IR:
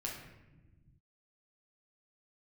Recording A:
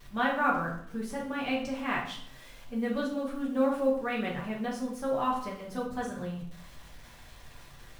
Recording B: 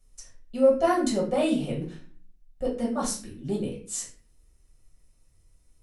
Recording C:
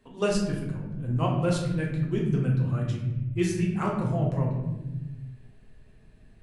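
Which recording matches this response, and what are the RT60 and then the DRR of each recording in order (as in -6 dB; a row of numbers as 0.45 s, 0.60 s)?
C; 0.65 s, 0.40 s, 1.1 s; -4.5 dB, -5.5 dB, -3.0 dB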